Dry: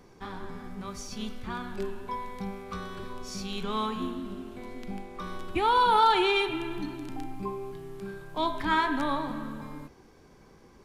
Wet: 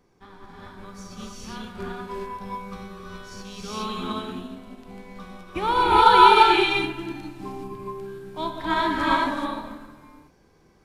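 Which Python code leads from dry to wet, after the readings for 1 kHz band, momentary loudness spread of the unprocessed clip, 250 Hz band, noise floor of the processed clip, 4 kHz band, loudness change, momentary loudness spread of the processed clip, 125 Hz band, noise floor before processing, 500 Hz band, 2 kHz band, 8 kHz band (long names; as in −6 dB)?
+7.5 dB, 18 LU, +3.5 dB, −59 dBFS, +6.5 dB, +10.0 dB, 24 LU, +2.5 dB, −56 dBFS, +5.0 dB, +6.5 dB, can't be measured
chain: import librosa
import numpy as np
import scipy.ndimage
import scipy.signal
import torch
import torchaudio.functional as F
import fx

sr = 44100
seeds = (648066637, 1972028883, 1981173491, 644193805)

y = fx.rev_gated(x, sr, seeds[0], gate_ms=450, shape='rising', drr_db=-4.5)
y = fx.upward_expand(y, sr, threshold_db=-39.0, expansion=1.5)
y = y * librosa.db_to_amplitude(4.0)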